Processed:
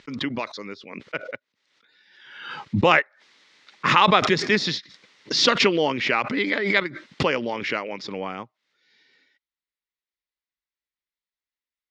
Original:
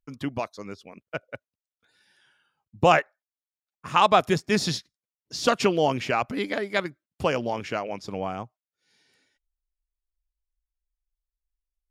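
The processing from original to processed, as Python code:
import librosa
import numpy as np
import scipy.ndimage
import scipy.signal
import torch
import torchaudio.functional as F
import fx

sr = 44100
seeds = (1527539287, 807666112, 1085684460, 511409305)

y = fx.cabinet(x, sr, low_hz=210.0, low_slope=12, high_hz=5200.0, hz=(700.0, 2000.0, 3700.0), db=(-9, 8, 4))
y = fx.pre_swell(y, sr, db_per_s=55.0)
y = y * 10.0 ** (2.5 / 20.0)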